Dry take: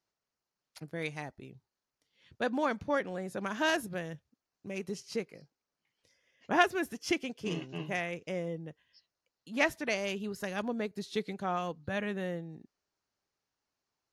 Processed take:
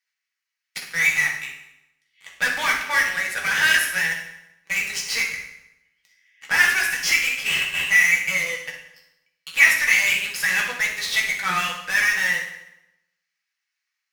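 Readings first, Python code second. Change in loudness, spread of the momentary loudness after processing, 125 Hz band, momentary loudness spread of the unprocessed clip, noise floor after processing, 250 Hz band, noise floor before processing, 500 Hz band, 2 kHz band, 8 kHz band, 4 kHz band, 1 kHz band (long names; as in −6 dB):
+14.5 dB, 14 LU, −2.0 dB, 14 LU, −82 dBFS, −8.0 dB, below −85 dBFS, −5.5 dB, +19.5 dB, +21.0 dB, +16.5 dB, +5.0 dB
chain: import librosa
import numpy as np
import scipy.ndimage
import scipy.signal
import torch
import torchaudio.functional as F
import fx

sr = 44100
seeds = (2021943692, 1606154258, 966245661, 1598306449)

p1 = fx.highpass_res(x, sr, hz=2000.0, q=4.0)
p2 = fx.fuzz(p1, sr, gain_db=43.0, gate_db=-52.0)
p3 = p1 + (p2 * 10.0 ** (-10.5 / 20.0))
y = fx.rev_fdn(p3, sr, rt60_s=0.88, lf_ratio=1.1, hf_ratio=0.85, size_ms=36.0, drr_db=-2.0)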